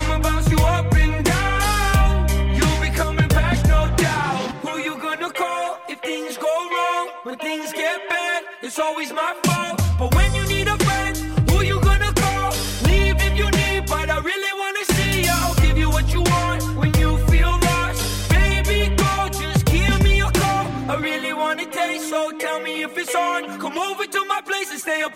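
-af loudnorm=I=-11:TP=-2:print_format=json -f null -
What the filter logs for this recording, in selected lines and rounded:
"input_i" : "-20.2",
"input_tp" : "-6.7",
"input_lra" : "4.7",
"input_thresh" : "-30.2",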